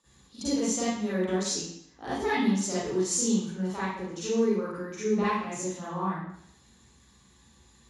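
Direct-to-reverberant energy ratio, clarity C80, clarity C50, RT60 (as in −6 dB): −11.5 dB, 1.5 dB, −3.5 dB, 0.70 s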